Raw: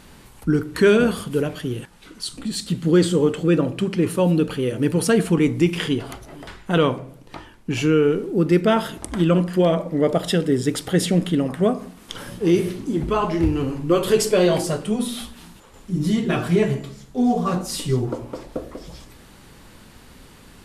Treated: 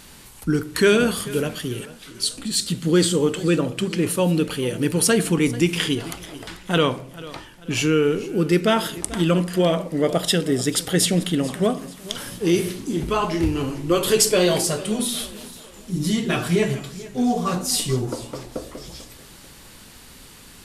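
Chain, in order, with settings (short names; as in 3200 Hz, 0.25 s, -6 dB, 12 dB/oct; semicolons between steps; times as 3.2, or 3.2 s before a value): high shelf 2500 Hz +10.5 dB; warbling echo 0.439 s, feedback 40%, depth 79 cents, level -18 dB; gain -2 dB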